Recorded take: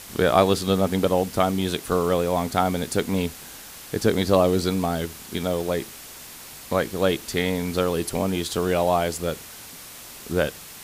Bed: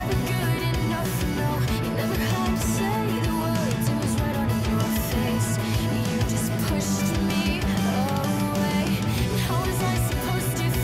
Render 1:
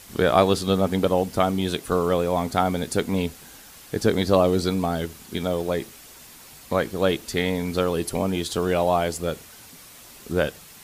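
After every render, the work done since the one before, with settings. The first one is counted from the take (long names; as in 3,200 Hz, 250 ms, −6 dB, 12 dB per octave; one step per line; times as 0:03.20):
broadband denoise 6 dB, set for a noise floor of −42 dBFS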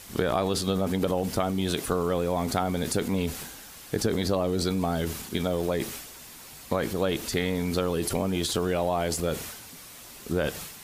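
downward compressor, threshold −23 dBFS, peak gain reduction 11.5 dB
transient designer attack +1 dB, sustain +8 dB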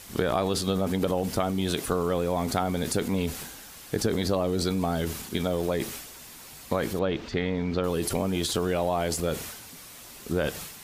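0:06.99–0:07.84: high-frequency loss of the air 200 metres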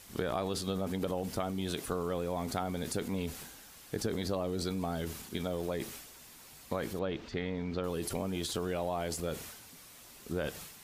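level −8 dB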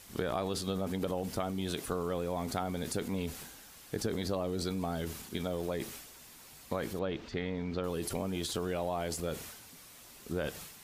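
no processing that can be heard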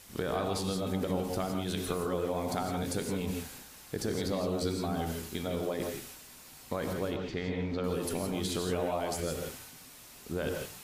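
reverb whose tail is shaped and stops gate 190 ms rising, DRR 2.5 dB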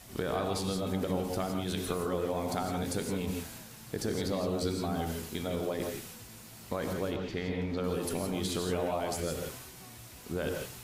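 mix in bed −29 dB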